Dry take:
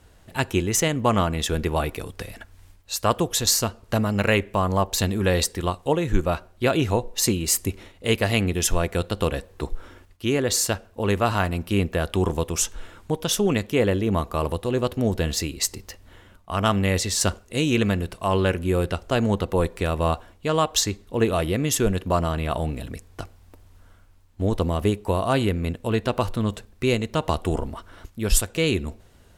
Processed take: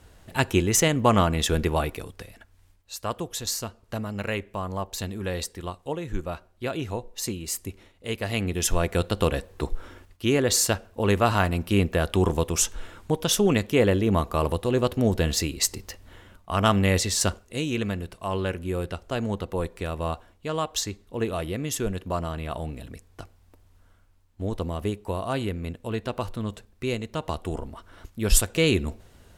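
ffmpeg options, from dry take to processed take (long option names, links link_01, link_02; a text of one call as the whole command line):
ffmpeg -i in.wav -af "volume=18dB,afade=type=out:start_time=1.57:duration=0.74:silence=0.316228,afade=type=in:start_time=8.16:duration=0.84:silence=0.334965,afade=type=out:start_time=16.94:duration=0.74:silence=0.446684,afade=type=in:start_time=27.73:duration=0.69:silence=0.421697" out.wav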